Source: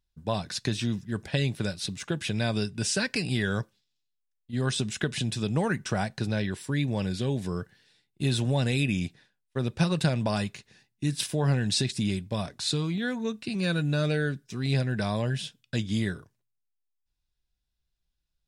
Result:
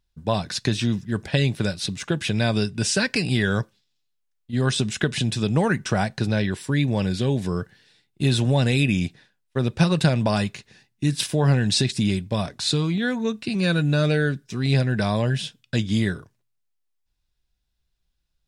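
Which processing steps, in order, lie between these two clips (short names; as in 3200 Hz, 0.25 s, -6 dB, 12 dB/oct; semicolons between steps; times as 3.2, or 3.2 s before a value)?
high shelf 8700 Hz -4.5 dB; gain +6 dB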